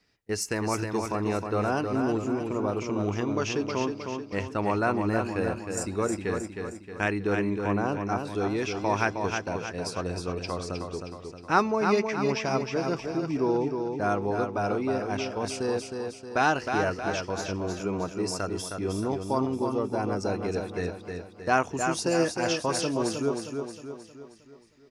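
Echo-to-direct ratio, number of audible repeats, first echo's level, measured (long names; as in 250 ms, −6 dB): −4.5 dB, 5, −5.5 dB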